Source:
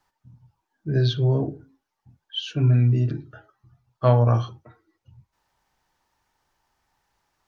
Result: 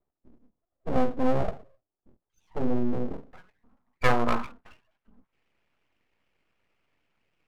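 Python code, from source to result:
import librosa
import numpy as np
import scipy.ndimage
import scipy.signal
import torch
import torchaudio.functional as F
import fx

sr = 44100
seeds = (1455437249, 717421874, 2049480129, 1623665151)

y = fx.filter_sweep_lowpass(x, sr, from_hz=360.0, to_hz=1400.0, start_s=1.92, end_s=4.39, q=4.3)
y = np.abs(y)
y = F.gain(torch.from_numpy(y), -5.0).numpy()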